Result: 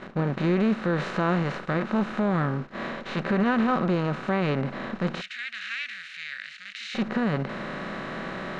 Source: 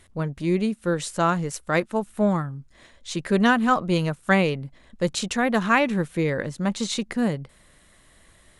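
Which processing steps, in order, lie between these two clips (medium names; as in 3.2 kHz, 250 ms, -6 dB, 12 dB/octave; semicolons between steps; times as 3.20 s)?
spectral levelling over time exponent 0.4; gate -30 dBFS, range -15 dB; 5.21–6.95 s: inverse Chebyshev high-pass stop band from 1 kHz, stop band 40 dB; harmonic-percussive split percussive -14 dB; peak limiter -14 dBFS, peak gain reduction 9 dB; distance through air 220 m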